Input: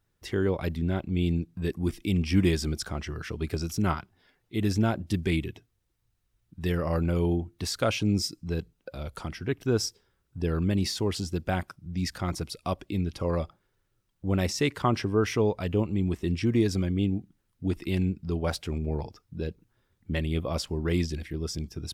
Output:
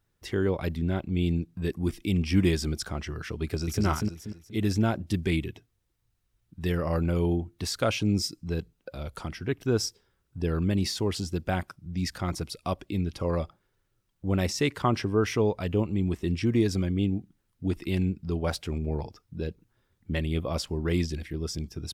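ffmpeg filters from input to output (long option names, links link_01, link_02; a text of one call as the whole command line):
ffmpeg -i in.wav -filter_complex "[0:a]asplit=2[link_01][link_02];[link_02]afade=type=in:start_time=3.43:duration=0.01,afade=type=out:start_time=3.84:duration=0.01,aecho=0:1:240|480|720|960|1200:0.841395|0.294488|0.103071|0.0360748|0.0126262[link_03];[link_01][link_03]amix=inputs=2:normalize=0" out.wav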